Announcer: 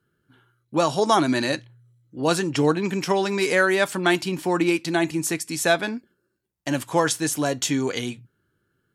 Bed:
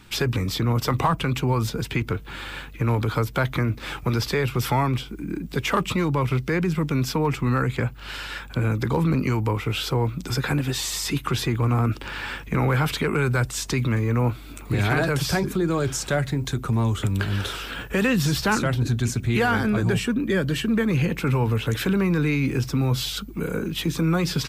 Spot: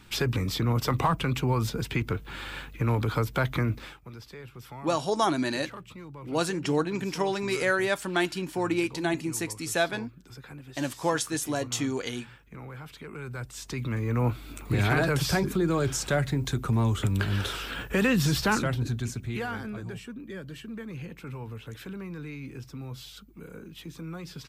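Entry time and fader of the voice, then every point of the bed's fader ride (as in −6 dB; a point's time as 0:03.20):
4.10 s, −6.0 dB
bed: 0:03.79 −3.5 dB
0:03.99 −21 dB
0:12.88 −21 dB
0:14.33 −2.5 dB
0:18.44 −2.5 dB
0:19.99 −17 dB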